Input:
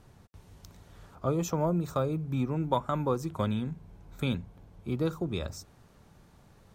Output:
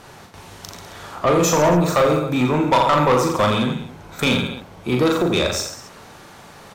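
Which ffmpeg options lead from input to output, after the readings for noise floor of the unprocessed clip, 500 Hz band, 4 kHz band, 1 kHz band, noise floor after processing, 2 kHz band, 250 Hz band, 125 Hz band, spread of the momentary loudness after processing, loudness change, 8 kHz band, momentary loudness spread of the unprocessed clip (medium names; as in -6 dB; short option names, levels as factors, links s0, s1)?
-59 dBFS, +14.5 dB, +20.0 dB, +16.0 dB, -43 dBFS, +21.0 dB, +11.5 dB, +8.0 dB, 20 LU, +13.0 dB, +19.0 dB, 11 LU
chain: -filter_complex "[0:a]aecho=1:1:40|86|138.9|199.7|269.7:0.631|0.398|0.251|0.158|0.1,asplit=2[s0][s1];[s1]highpass=f=720:p=1,volume=12.6,asoftclip=type=tanh:threshold=0.251[s2];[s0][s2]amix=inputs=2:normalize=0,lowpass=f=7100:p=1,volume=0.501,volume=1.78"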